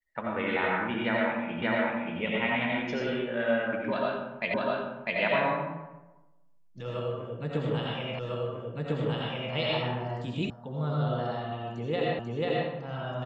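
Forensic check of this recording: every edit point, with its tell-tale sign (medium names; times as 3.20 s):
1.62 s: repeat of the last 0.58 s
4.54 s: repeat of the last 0.65 s
8.19 s: repeat of the last 1.35 s
10.50 s: sound stops dead
12.19 s: repeat of the last 0.49 s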